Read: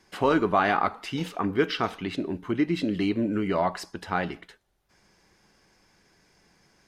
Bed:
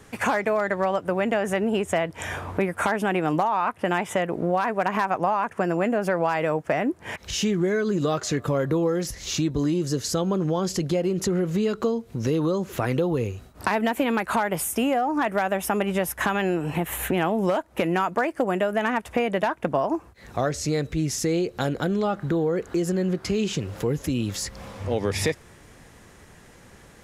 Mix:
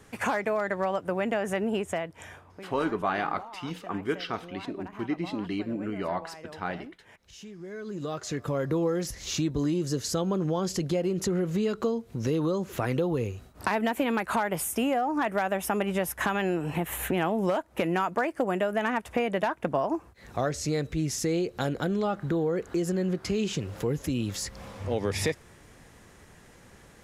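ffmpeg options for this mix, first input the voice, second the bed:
-filter_complex "[0:a]adelay=2500,volume=-6dB[a];[1:a]volume=13dB,afade=t=out:st=1.74:d=0.7:silence=0.149624,afade=t=in:st=7.58:d=1.24:silence=0.133352[b];[a][b]amix=inputs=2:normalize=0"

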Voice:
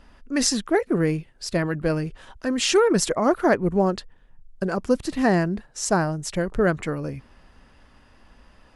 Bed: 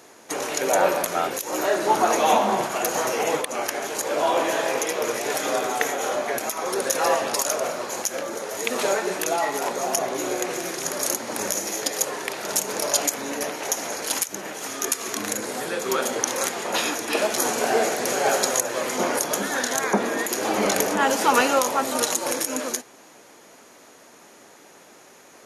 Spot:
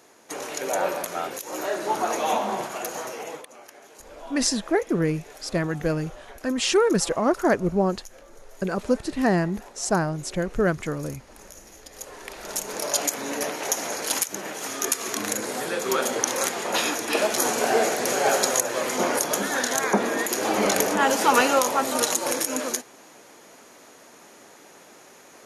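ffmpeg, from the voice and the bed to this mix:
-filter_complex "[0:a]adelay=4000,volume=-1.5dB[a];[1:a]volume=14.5dB,afade=t=out:st=2.66:d=0.93:silence=0.188365,afade=t=in:st=11.88:d=1.5:silence=0.1[b];[a][b]amix=inputs=2:normalize=0"

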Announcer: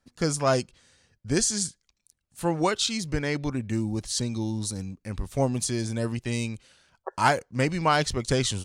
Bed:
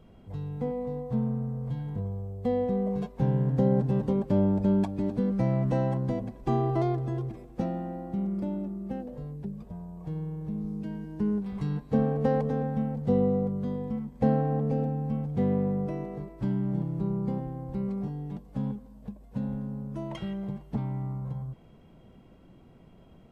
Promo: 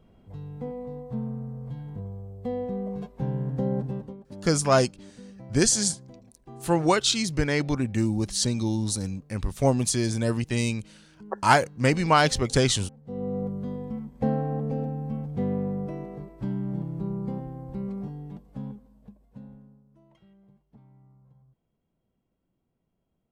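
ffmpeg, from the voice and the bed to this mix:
-filter_complex "[0:a]adelay=4250,volume=3dB[a];[1:a]volume=13.5dB,afade=t=out:st=3.83:d=0.34:silence=0.177828,afade=t=in:st=13.05:d=0.41:silence=0.141254,afade=t=out:st=17.96:d=1.87:silence=0.0794328[b];[a][b]amix=inputs=2:normalize=0"

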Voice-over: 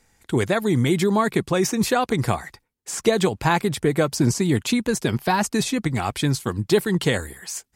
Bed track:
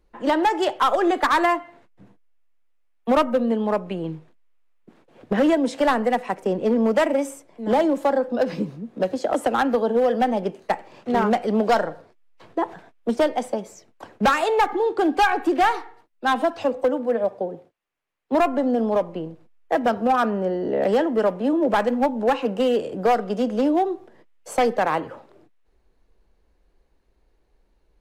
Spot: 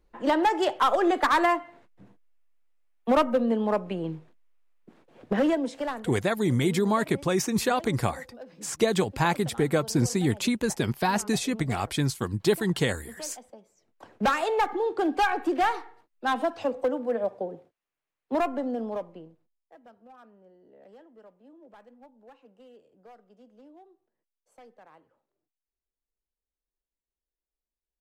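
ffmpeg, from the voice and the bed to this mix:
-filter_complex "[0:a]adelay=5750,volume=-4.5dB[a];[1:a]volume=14dB,afade=t=out:st=5.25:d=0.86:silence=0.105925,afade=t=in:st=13.76:d=0.41:silence=0.141254,afade=t=out:st=18.19:d=1.46:silence=0.0446684[b];[a][b]amix=inputs=2:normalize=0"

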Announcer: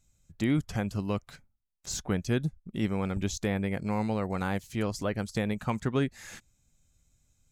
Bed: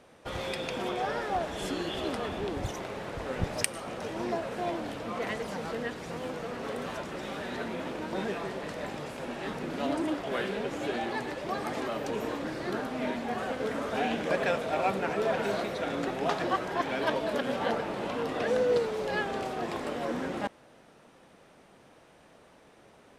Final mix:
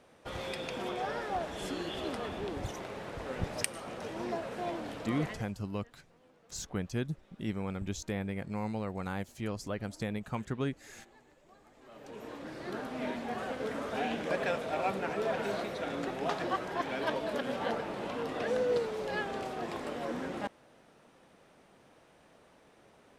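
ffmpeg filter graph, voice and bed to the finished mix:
-filter_complex "[0:a]adelay=4650,volume=-6dB[a];[1:a]volume=19.5dB,afade=t=out:st=5.15:d=0.38:silence=0.0668344,afade=t=in:st=11.79:d=1.22:silence=0.0668344[b];[a][b]amix=inputs=2:normalize=0"

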